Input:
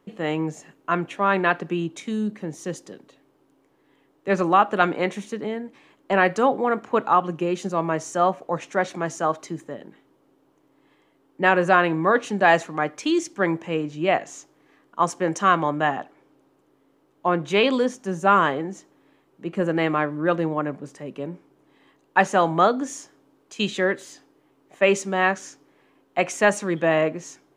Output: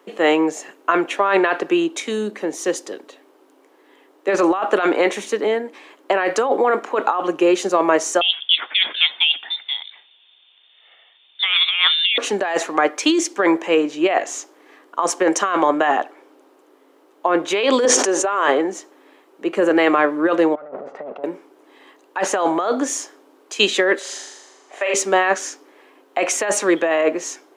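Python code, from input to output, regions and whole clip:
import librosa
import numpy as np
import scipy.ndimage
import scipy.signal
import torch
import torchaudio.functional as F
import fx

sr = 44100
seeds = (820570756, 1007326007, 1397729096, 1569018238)

y = fx.chain(x, sr, fx.highpass(hz=400.0, slope=12),
    fx.freq_invert(carrier_hz=3900), at=(8.21, 12.18))
y = fx.chain(y, sr, fx.cheby1_bandpass(low_hz=380.0, high_hz=7700.0, order=2),
    fx.sustainer(db_per_s=34.0), at=(17.85, 18.48))
y = fx.chain(y, sr, fx.lower_of_two(delay_ms=1.5),
    fx.lowpass(hz=1100.0, slope=12),
    fx.over_compress(threshold_db=-41.0, ratio=-1.0), at=(20.55, 21.24))
y = fx.chain(y, sr, fx.bandpass_edges(low_hz=500.0, high_hz=7700.0),
    fx.room_flutter(wall_m=6.9, rt60_s=1.1), at=(23.99, 24.94))
y = scipy.signal.sosfilt(scipy.signal.butter(4, 320.0, 'highpass', fs=sr, output='sos'), y)
y = fx.over_compress(y, sr, threshold_db=-24.0, ratio=-1.0)
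y = y * 10.0 ** (8.0 / 20.0)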